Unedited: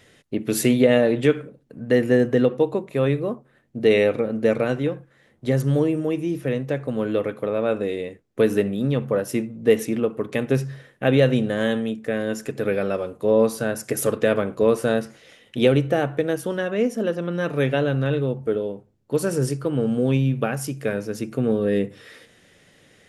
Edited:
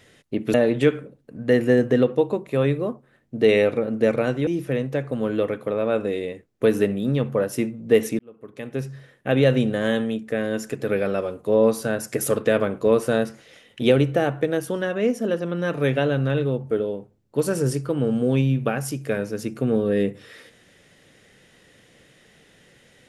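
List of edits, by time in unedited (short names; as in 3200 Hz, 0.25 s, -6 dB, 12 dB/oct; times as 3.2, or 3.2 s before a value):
0.54–0.96 cut
4.89–6.23 cut
9.95–11.32 fade in linear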